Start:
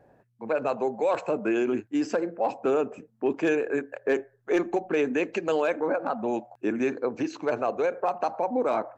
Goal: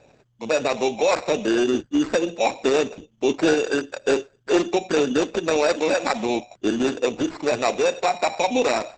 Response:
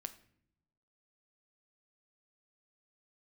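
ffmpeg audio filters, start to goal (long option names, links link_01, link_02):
-af "acrusher=samples=14:mix=1:aa=0.000001,volume=5.5dB" -ar 48000 -c:a libopus -b:a 10k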